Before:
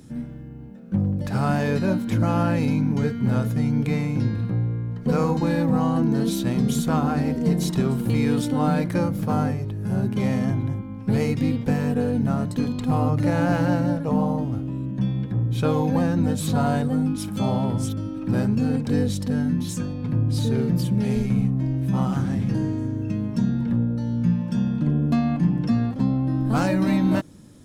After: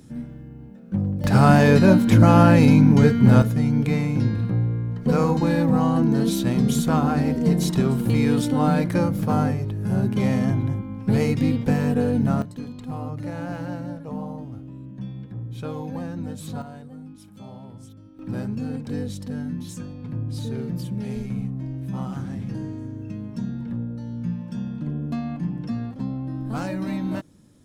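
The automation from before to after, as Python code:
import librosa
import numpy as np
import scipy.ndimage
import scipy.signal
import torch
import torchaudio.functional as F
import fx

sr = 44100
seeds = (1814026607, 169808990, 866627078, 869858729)

y = fx.gain(x, sr, db=fx.steps((0.0, -1.5), (1.24, 8.0), (3.42, 1.5), (12.42, -10.0), (16.62, -18.0), (18.19, -7.0)))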